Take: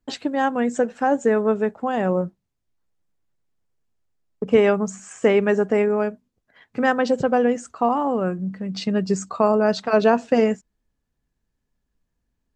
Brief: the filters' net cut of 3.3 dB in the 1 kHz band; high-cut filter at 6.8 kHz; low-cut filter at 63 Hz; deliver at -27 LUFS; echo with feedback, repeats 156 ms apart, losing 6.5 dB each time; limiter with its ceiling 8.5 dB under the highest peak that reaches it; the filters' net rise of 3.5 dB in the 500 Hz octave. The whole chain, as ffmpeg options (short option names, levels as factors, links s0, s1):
-af "highpass=63,lowpass=6800,equalizer=f=500:t=o:g=6,equalizer=f=1000:t=o:g=-8,alimiter=limit=0.316:level=0:latency=1,aecho=1:1:156|312|468|624|780|936:0.473|0.222|0.105|0.0491|0.0231|0.0109,volume=0.447"